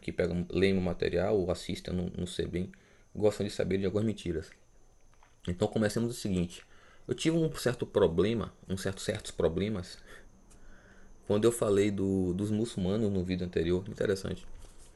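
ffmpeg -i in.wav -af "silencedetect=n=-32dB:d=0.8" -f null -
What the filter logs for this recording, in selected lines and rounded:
silence_start: 4.40
silence_end: 5.45 | silence_duration: 1.05
silence_start: 9.81
silence_end: 11.30 | silence_duration: 1.49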